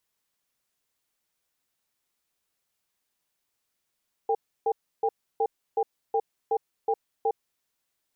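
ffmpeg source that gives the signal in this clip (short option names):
-f lavfi -i "aevalsrc='0.0631*(sin(2*PI*449*t)+sin(2*PI*800*t))*clip(min(mod(t,0.37),0.06-mod(t,0.37))/0.005,0,1)':d=3.08:s=44100"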